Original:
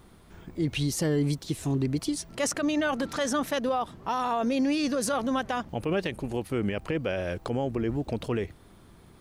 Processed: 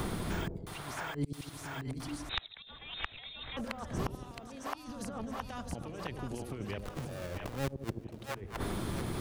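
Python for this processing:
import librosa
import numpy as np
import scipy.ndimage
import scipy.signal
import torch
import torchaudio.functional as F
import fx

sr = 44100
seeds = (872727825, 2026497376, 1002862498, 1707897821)

y = fx.halfwave_hold(x, sr, at=(6.79, 7.9))
y = fx.over_compress(y, sr, threshold_db=-30.0, ratio=-0.5)
y = fx.gate_flip(y, sr, shuts_db=-31.0, range_db=-35)
y = fx.echo_split(y, sr, split_hz=620.0, low_ms=81, high_ms=667, feedback_pct=52, wet_db=-6.0)
y = fx.freq_invert(y, sr, carrier_hz=3900, at=(2.29, 3.57))
y = fx.band_squash(y, sr, depth_pct=100)
y = y * librosa.db_to_amplitude(13.0)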